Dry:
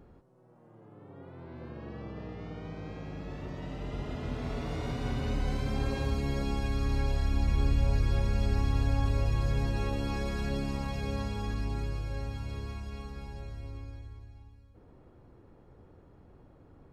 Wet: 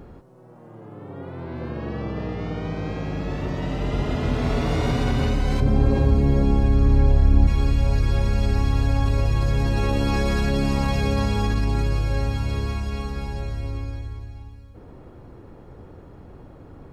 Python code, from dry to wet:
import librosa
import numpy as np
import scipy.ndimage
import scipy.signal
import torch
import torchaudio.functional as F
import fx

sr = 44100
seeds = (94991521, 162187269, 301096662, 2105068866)

p1 = fx.tilt_shelf(x, sr, db=7.5, hz=1100.0, at=(5.6, 7.47))
p2 = fx.over_compress(p1, sr, threshold_db=-33.0, ratio=-1.0)
p3 = p1 + F.gain(torch.from_numpy(p2), -2.0).numpy()
y = F.gain(torch.from_numpy(p3), 5.0).numpy()